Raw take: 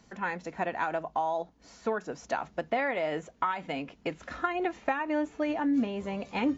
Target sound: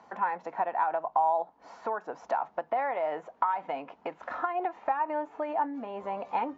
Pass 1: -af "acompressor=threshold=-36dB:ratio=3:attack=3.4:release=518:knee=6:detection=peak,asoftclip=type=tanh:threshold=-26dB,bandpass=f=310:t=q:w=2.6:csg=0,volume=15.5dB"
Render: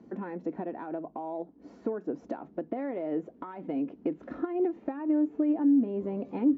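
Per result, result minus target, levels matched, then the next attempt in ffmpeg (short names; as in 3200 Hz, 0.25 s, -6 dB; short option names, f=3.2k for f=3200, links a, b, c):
250 Hz band +15.5 dB; soft clip: distortion +16 dB
-af "acompressor=threshold=-36dB:ratio=3:attack=3.4:release=518:knee=6:detection=peak,asoftclip=type=tanh:threshold=-26dB,bandpass=f=880:t=q:w=2.6:csg=0,volume=15.5dB"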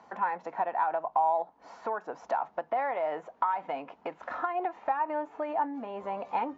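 soft clip: distortion +16 dB
-af "acompressor=threshold=-36dB:ratio=3:attack=3.4:release=518:knee=6:detection=peak,asoftclip=type=tanh:threshold=-17dB,bandpass=f=880:t=q:w=2.6:csg=0,volume=15.5dB"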